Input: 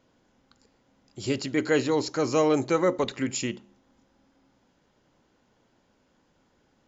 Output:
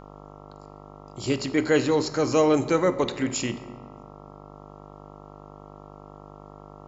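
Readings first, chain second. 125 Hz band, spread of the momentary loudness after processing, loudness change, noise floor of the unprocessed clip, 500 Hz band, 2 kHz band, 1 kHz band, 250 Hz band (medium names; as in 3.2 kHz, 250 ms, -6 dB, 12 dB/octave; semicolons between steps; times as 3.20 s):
+3.0 dB, 17 LU, +2.0 dB, -68 dBFS, +2.0 dB, +1.5 dB, +2.0 dB, +2.5 dB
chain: mains buzz 50 Hz, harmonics 27, -47 dBFS -2 dB/octave; simulated room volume 1200 m³, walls mixed, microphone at 0.44 m; trim +1.5 dB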